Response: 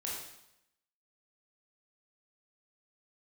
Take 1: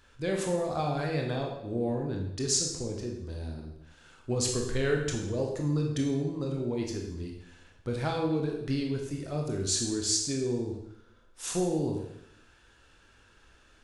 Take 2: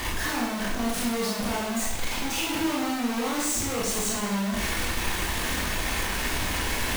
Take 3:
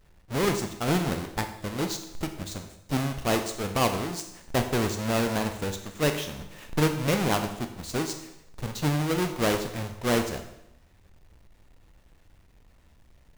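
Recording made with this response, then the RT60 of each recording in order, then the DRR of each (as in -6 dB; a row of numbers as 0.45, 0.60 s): 2; 0.80, 0.80, 0.80 s; 0.5, -5.0, 6.0 dB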